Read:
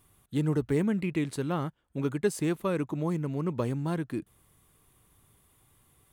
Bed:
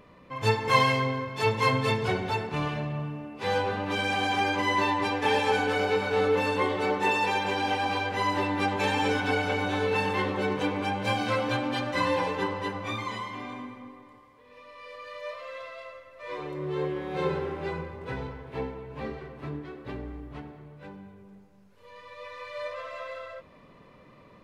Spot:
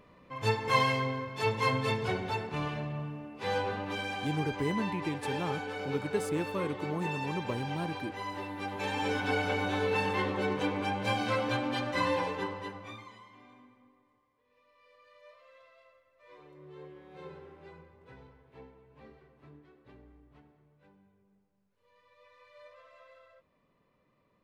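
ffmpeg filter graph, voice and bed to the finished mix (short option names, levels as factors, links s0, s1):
-filter_complex "[0:a]adelay=3900,volume=0.531[s0];[1:a]volume=1.58,afade=t=out:st=3.71:d=0.58:silence=0.446684,afade=t=in:st=8.6:d=0.8:silence=0.375837,afade=t=out:st=12.07:d=1.06:silence=0.16788[s1];[s0][s1]amix=inputs=2:normalize=0"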